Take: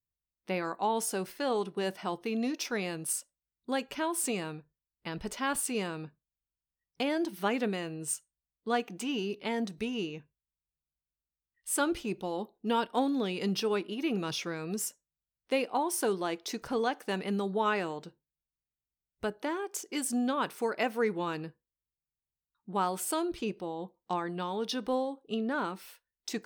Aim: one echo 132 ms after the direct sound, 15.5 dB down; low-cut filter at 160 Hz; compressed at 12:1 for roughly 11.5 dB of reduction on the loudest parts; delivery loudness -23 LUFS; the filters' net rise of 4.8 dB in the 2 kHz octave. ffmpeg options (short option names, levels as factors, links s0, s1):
-af "highpass=160,equalizer=f=2000:t=o:g=6.5,acompressor=threshold=0.02:ratio=12,aecho=1:1:132:0.168,volume=6.31"